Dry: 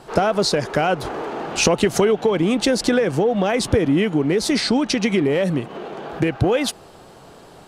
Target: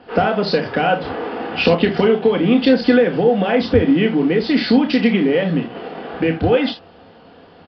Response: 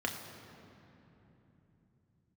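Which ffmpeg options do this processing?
-filter_complex "[0:a]asplit=2[a][b];[b]acrusher=bits=4:mix=0:aa=0.000001,volume=-10dB[c];[a][c]amix=inputs=2:normalize=0[d];[1:a]atrim=start_sample=2205,atrim=end_sample=3969[e];[d][e]afir=irnorm=-1:irlink=0,aresample=11025,aresample=44100,volume=-4.5dB"

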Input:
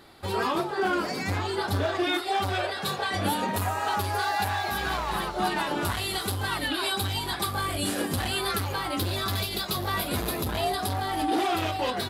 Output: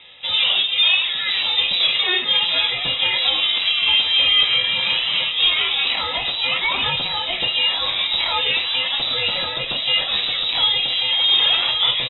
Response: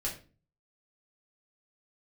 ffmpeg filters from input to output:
-filter_complex "[0:a]highpass=110,bandreject=f=2.5k:w=10,aecho=1:1:969:0.188,asplit=2[a][b];[1:a]atrim=start_sample=2205[c];[b][c]afir=irnorm=-1:irlink=0,volume=-4.5dB[d];[a][d]amix=inputs=2:normalize=0,lowpass=f=3.4k:t=q:w=0.5098,lowpass=f=3.4k:t=q:w=0.6013,lowpass=f=3.4k:t=q:w=0.9,lowpass=f=3.4k:t=q:w=2.563,afreqshift=-4000,volume=5.5dB"

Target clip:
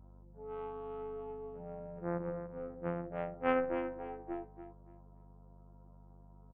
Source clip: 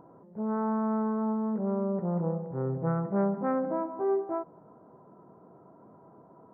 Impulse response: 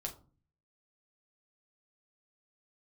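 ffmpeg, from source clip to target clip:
-af "lowpass=1.8k,equalizer=f=170:w=1.1:g=-8,aecho=1:1:6.1:0.34,adynamicequalizer=threshold=0.00631:dfrequency=370:dqfactor=1.1:tfrequency=370:tqfactor=1.1:attack=5:release=100:ratio=0.375:range=3:mode=boostabove:tftype=bell,afftfilt=real='hypot(re,im)*cos(PI*b)':imag='0':win_size=2048:overlap=0.75,aeval=exprs='0.376*(cos(1*acos(clip(val(0)/0.376,-1,1)))-cos(1*PI/2))+0.0668*(cos(2*acos(clip(val(0)/0.376,-1,1)))-cos(2*PI/2))+0.00531*(cos(3*acos(clip(val(0)/0.376,-1,1)))-cos(3*PI/2))+0.0376*(cos(7*acos(clip(val(0)/0.376,-1,1)))-cos(7*PI/2))+0.015*(cos(8*acos(clip(val(0)/0.376,-1,1)))-cos(8*PI/2))':c=same,aeval=exprs='val(0)+0.00126*(sin(2*PI*50*n/s)+sin(2*PI*2*50*n/s)/2+sin(2*PI*3*50*n/s)/3+sin(2*PI*4*50*n/s)/4+sin(2*PI*5*50*n/s)/5)':c=same,aecho=1:1:286|572|858:0.316|0.0791|0.0198,volume=3dB"

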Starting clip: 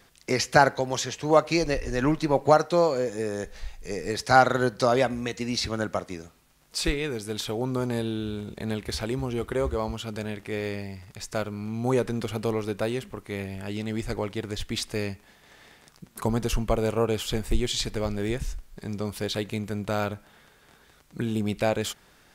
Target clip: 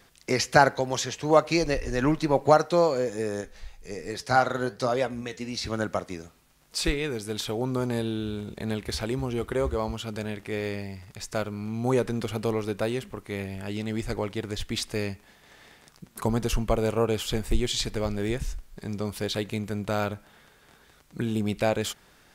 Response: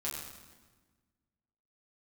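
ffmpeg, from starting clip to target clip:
-filter_complex "[0:a]asplit=3[a][b][c];[a]afade=t=out:st=3.4:d=0.02[d];[b]flanger=delay=5.3:depth=7.2:regen=73:speed=1.2:shape=triangular,afade=t=in:st=3.4:d=0.02,afade=t=out:st=5.65:d=0.02[e];[c]afade=t=in:st=5.65:d=0.02[f];[d][e][f]amix=inputs=3:normalize=0"

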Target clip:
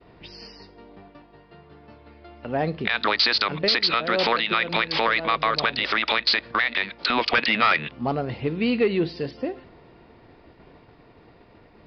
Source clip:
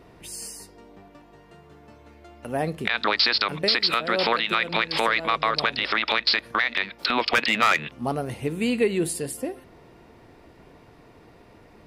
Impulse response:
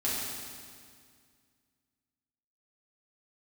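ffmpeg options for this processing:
-af "aeval=exprs='0.355*(cos(1*acos(clip(val(0)/0.355,-1,1)))-cos(1*PI/2))+0.02*(cos(5*acos(clip(val(0)/0.355,-1,1)))-cos(5*PI/2))':c=same,aresample=11025,aresample=44100,agate=range=-33dB:threshold=-45dB:ratio=3:detection=peak"

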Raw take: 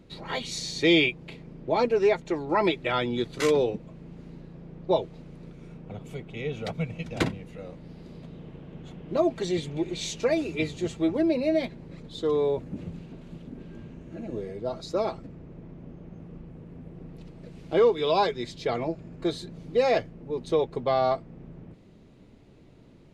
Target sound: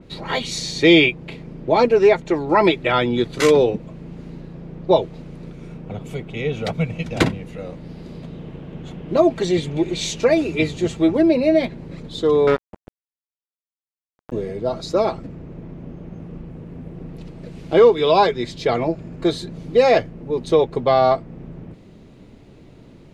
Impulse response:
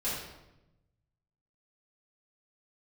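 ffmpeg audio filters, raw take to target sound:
-filter_complex "[0:a]asettb=1/sr,asplit=3[a][b][c];[a]atrim=end=12.474[d];[b]atrim=start=12.47:end=14.32,asetpts=PTS-STARTPTS,afade=t=in:d=0.004:c=qsin,afade=t=out:st=1.846:d=0.004:c=qsin,acrusher=bits=3:mix=0:aa=0.5[e];[c]atrim=start=14.316[f];[d][e]acrossfade=d=0.004:c1=hsin:c2=qsin[g];[g][f]acrossfade=d=0.004:c1=qsin:c2=hsin,adynamicequalizer=threshold=0.00794:dfrequency=3300:dqfactor=0.7:tfrequency=3300:tqfactor=0.7:attack=5:release=100:ratio=0.375:range=2.5:mode=cutabove:tftype=highshelf,volume=8.5dB"

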